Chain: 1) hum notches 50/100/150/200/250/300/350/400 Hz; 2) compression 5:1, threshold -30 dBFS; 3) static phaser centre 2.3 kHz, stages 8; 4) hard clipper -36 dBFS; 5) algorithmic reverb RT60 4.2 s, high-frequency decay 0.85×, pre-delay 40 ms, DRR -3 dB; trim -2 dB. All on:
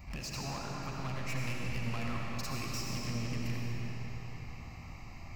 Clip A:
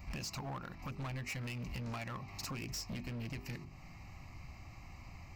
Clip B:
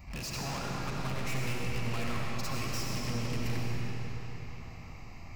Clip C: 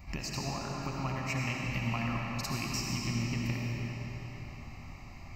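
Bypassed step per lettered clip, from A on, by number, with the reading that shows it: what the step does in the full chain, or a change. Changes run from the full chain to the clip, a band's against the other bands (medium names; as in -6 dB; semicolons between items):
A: 5, crest factor change -6.5 dB; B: 2, mean gain reduction 6.5 dB; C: 4, distortion -8 dB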